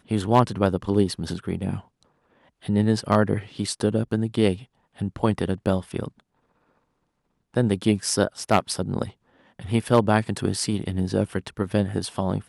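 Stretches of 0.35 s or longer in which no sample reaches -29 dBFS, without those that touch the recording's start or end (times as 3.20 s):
1.78–2.69 s
4.55–5.01 s
6.08–7.56 s
9.09–9.59 s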